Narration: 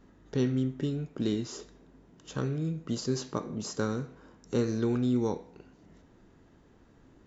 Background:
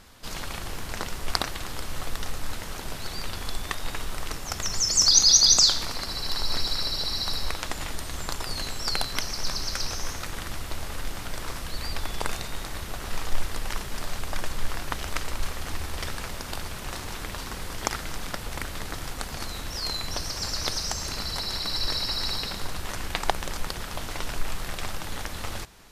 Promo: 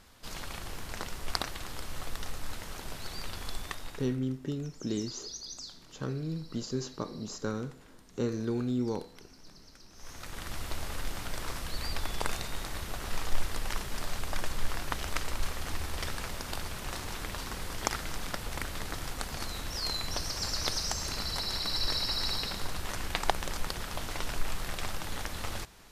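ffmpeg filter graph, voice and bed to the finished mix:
ffmpeg -i stem1.wav -i stem2.wav -filter_complex "[0:a]adelay=3650,volume=-3.5dB[link_01];[1:a]volume=17dB,afade=type=out:start_time=3.59:duration=0.6:silence=0.1,afade=type=in:start_time=9.93:duration=0.71:silence=0.0707946[link_02];[link_01][link_02]amix=inputs=2:normalize=0" out.wav

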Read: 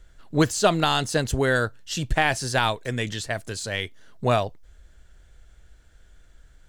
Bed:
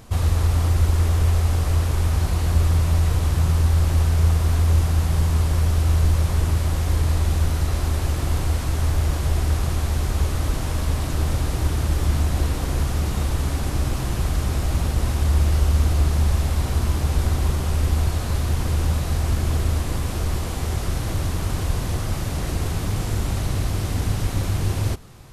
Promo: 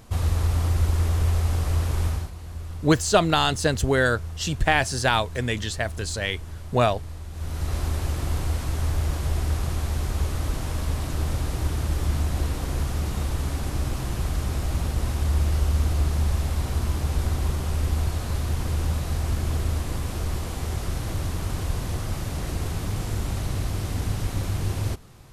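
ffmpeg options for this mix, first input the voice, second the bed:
ffmpeg -i stem1.wav -i stem2.wav -filter_complex "[0:a]adelay=2500,volume=1dB[link_01];[1:a]volume=9.5dB,afade=type=out:start_time=2.06:duration=0.25:silence=0.211349,afade=type=in:start_time=7.32:duration=0.43:silence=0.223872[link_02];[link_01][link_02]amix=inputs=2:normalize=0" out.wav

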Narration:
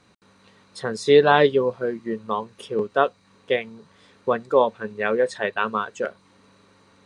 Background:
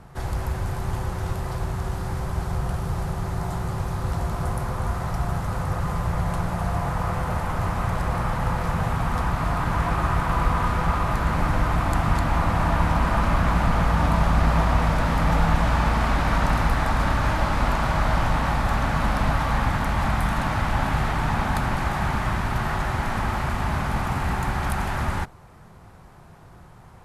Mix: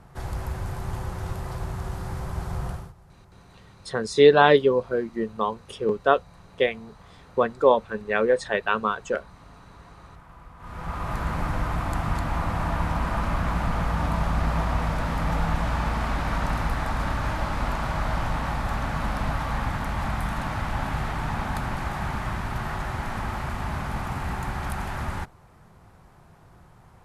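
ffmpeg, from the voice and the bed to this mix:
ffmpeg -i stem1.wav -i stem2.wav -filter_complex "[0:a]adelay=3100,volume=0dB[link_01];[1:a]volume=16.5dB,afade=type=out:start_time=2.67:duration=0.26:silence=0.0841395,afade=type=in:start_time=10.58:duration=0.6:silence=0.0944061[link_02];[link_01][link_02]amix=inputs=2:normalize=0" out.wav

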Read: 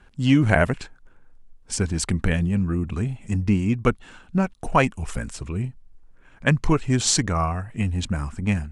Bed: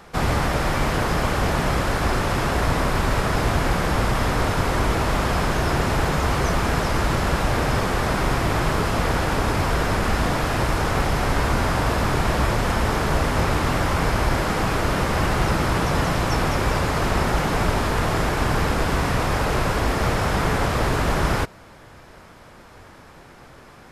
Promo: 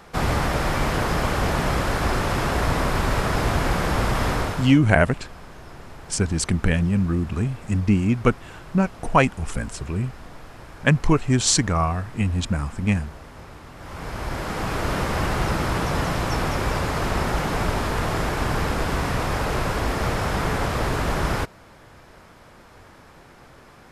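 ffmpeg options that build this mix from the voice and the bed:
ffmpeg -i stem1.wav -i stem2.wav -filter_complex "[0:a]adelay=4400,volume=1.5dB[link_01];[1:a]volume=17.5dB,afade=type=out:start_time=4.31:duration=0.48:silence=0.1,afade=type=in:start_time=13.76:duration=1.17:silence=0.11885[link_02];[link_01][link_02]amix=inputs=2:normalize=0" out.wav

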